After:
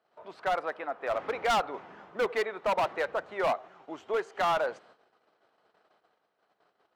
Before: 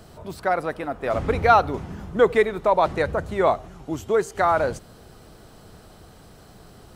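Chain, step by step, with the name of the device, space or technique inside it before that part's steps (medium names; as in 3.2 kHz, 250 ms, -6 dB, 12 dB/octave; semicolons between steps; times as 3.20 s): walkie-talkie (band-pass 580–2600 Hz; hard clipper -20 dBFS, distortion -8 dB; gate -52 dBFS, range -20 dB); trim -3 dB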